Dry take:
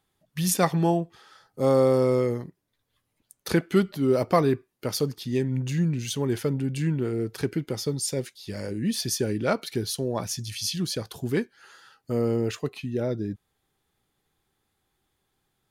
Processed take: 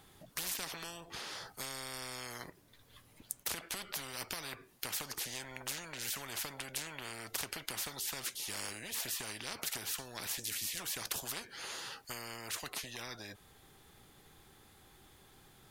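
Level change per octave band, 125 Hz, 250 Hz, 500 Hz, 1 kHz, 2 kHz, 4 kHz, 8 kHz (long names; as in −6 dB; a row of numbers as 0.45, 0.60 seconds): −26.0, −26.0, −25.5, −14.0, −4.5, −5.0, −5.0 decibels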